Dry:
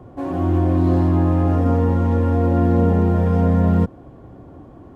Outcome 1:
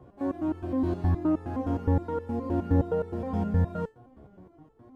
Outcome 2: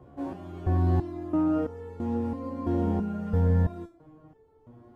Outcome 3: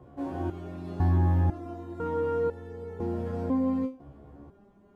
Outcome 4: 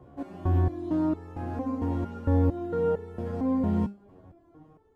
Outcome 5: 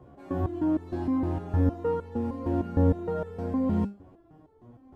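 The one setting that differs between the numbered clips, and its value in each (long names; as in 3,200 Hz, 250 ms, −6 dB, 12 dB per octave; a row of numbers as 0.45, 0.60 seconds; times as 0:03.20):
step-sequenced resonator, speed: 9.6, 3, 2, 4.4, 6.5 Hertz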